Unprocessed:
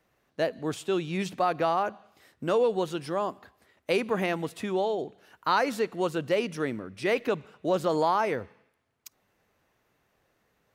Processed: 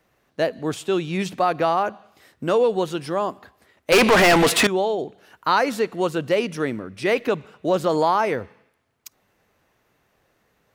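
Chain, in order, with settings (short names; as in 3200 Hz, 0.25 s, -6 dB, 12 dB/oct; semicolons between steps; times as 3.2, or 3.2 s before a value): 3.92–4.67 overdrive pedal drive 32 dB, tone 7500 Hz, clips at -13 dBFS; gain +5.5 dB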